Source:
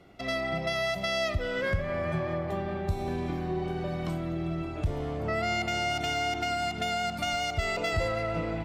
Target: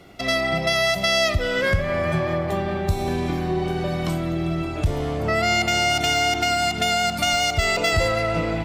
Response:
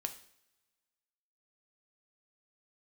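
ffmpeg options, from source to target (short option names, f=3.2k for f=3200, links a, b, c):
-af "highshelf=f=3.4k:g=8,volume=7.5dB"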